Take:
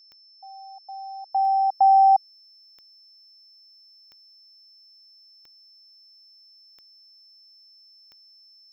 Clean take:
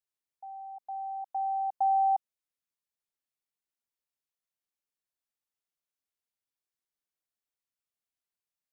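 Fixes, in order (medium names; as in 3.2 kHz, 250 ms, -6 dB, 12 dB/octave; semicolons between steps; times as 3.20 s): de-click; band-stop 5.3 kHz, Q 30; gain correction -10 dB, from 1.32 s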